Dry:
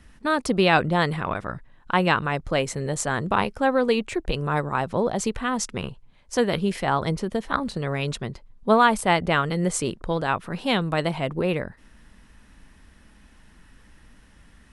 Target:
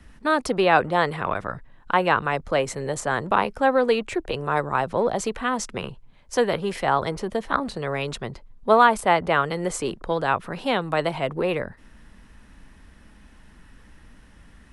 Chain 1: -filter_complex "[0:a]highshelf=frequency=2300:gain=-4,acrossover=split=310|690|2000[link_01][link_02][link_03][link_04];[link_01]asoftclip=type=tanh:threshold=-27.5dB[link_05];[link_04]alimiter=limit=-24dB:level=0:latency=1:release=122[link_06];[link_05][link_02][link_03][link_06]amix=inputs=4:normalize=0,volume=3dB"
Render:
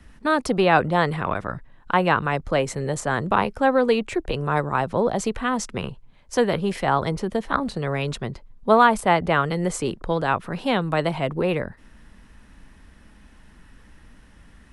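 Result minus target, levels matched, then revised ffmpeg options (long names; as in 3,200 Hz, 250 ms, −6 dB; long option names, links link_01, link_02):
soft clipping: distortion −7 dB
-filter_complex "[0:a]highshelf=frequency=2300:gain=-4,acrossover=split=310|690|2000[link_01][link_02][link_03][link_04];[link_01]asoftclip=type=tanh:threshold=-37dB[link_05];[link_04]alimiter=limit=-24dB:level=0:latency=1:release=122[link_06];[link_05][link_02][link_03][link_06]amix=inputs=4:normalize=0,volume=3dB"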